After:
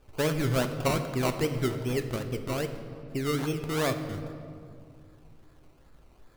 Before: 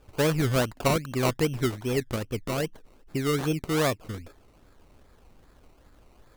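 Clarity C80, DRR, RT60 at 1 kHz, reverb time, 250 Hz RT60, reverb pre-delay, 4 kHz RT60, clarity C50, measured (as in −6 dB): 10.5 dB, 6.5 dB, 2.0 s, 2.2 s, 2.9 s, 3 ms, 1.3 s, 9.5 dB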